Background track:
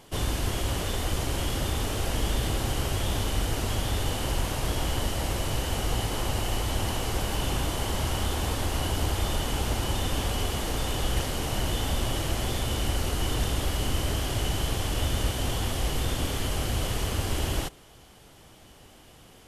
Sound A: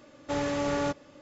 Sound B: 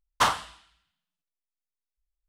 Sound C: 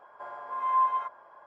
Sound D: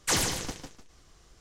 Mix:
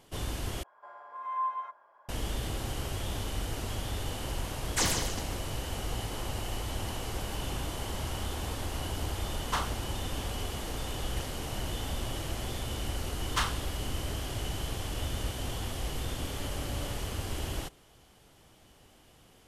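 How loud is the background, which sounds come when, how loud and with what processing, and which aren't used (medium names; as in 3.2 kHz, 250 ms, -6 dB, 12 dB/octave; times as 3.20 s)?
background track -7 dB
0.63 s: replace with C -6.5 dB + bass shelf 330 Hz -9 dB
4.69 s: add D -2.5 dB
9.32 s: add B -10 dB
13.16 s: add B -5 dB + high-pass 1.3 kHz
16.08 s: add A -18 dB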